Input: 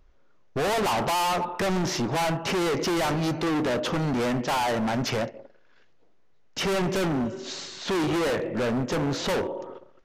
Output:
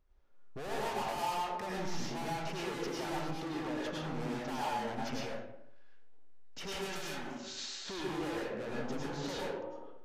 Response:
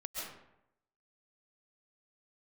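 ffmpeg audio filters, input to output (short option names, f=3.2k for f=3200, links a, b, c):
-filter_complex "[0:a]asettb=1/sr,asplit=3[a][b][c];[a]atrim=end=6.724[d];[b]atrim=start=6.72:end=7.81,asetpts=PTS-STARTPTS,afade=t=in:d=0.004:c=qsin,afade=t=out:st=1.086:d=0.004:c=qsin,tiltshelf=f=1.1k:g=-7.5[e];[c]atrim=start=7.806[f];[d][e]acrossfade=d=0.004:c1=hsin:c2=qsin[g];[g][f]acrossfade=d=0.004:c1=qsin:c2=hsin,acompressor=threshold=-30dB:ratio=2[h];[1:a]atrim=start_sample=2205,asetrate=57330,aresample=44100[i];[h][i]afir=irnorm=-1:irlink=0,volume=-7dB"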